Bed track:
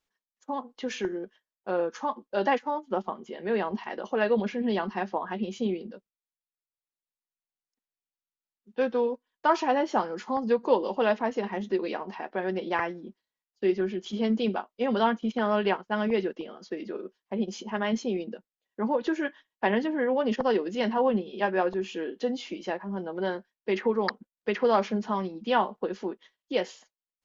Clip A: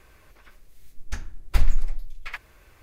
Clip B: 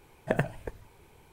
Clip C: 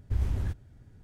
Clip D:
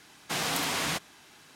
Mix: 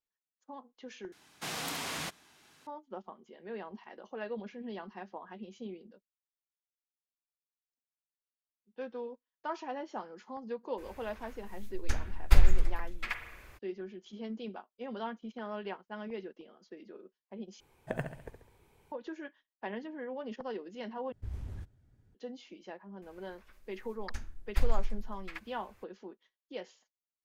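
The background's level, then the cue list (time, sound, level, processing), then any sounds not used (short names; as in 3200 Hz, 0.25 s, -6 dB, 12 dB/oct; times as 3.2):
bed track -14.5 dB
1.12 replace with D -7.5 dB
10.77 add A -0.5 dB, fades 0.02 s + spring tank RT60 1 s, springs 34/51 ms, chirp 55 ms, DRR 7 dB
17.6 replace with B -9 dB + feedback echo 68 ms, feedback 46%, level -9 dB
21.12 replace with C -12 dB
23.02 add A -9 dB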